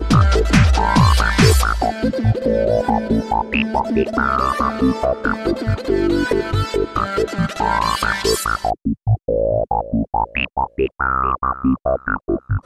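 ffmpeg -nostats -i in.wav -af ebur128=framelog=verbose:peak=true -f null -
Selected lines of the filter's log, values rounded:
Integrated loudness:
  I:         -18.0 LUFS
  Threshold: -28.0 LUFS
Loudness range:
  LRA:         3.8 LU
  Threshold: -38.5 LUFS
  LRA low:   -19.7 LUFS
  LRA high:  -15.9 LUFS
True peak:
  Peak:       -2.9 dBFS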